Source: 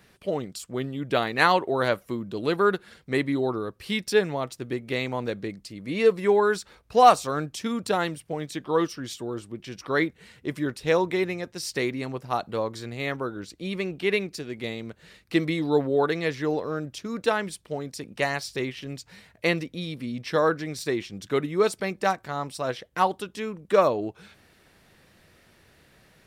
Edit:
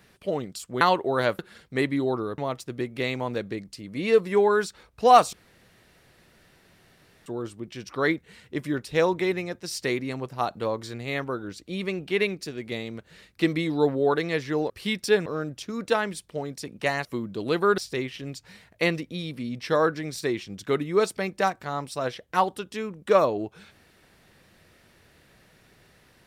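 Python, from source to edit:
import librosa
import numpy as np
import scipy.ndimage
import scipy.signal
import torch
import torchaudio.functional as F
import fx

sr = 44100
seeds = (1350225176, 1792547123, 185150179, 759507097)

y = fx.edit(x, sr, fx.cut(start_s=0.81, length_s=0.63),
    fx.move(start_s=2.02, length_s=0.73, to_s=18.41),
    fx.move(start_s=3.74, length_s=0.56, to_s=16.62),
    fx.room_tone_fill(start_s=7.25, length_s=1.93), tone=tone)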